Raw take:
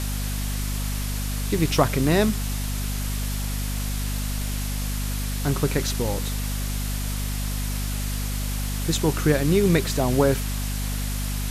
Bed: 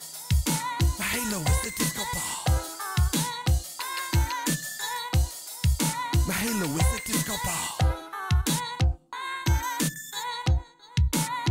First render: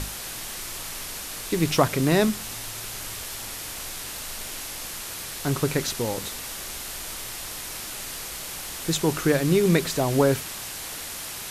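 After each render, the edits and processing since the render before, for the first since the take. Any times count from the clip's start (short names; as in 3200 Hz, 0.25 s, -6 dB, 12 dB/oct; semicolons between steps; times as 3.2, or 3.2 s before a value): notches 50/100/150/200/250 Hz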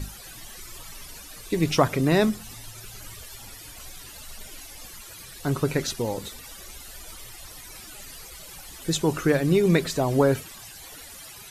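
denoiser 15 dB, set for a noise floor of -36 dBFS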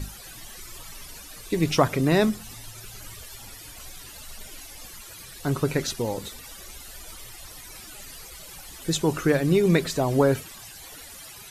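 nothing audible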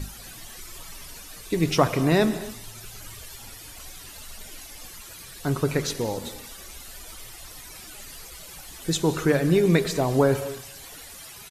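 echo 0.27 s -22.5 dB; non-linear reverb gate 0.27 s flat, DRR 11.5 dB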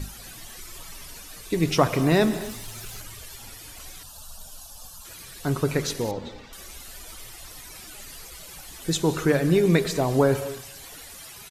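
1.92–3.02 G.711 law mismatch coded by mu; 4.03–5.05 fixed phaser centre 860 Hz, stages 4; 6.11–6.53 air absorption 180 m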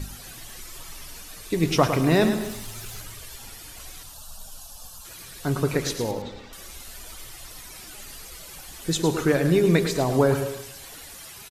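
echo 0.107 s -9 dB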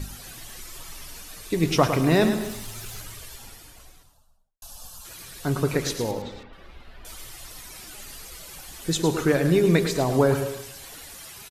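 3.15–4.62 studio fade out; 6.43–7.05 air absorption 390 m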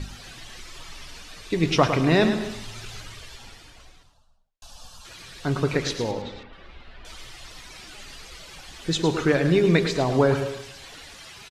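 LPF 3700 Hz 12 dB/oct; high shelf 2900 Hz +9 dB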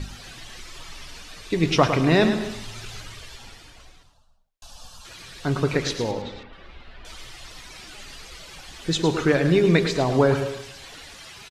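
gain +1 dB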